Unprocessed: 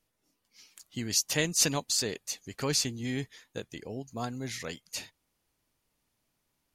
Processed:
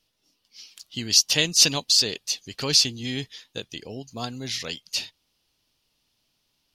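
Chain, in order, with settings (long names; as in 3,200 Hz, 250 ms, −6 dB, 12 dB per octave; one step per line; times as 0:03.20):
flat-topped bell 3,900 Hz +10.5 dB 1.3 octaves
level +2 dB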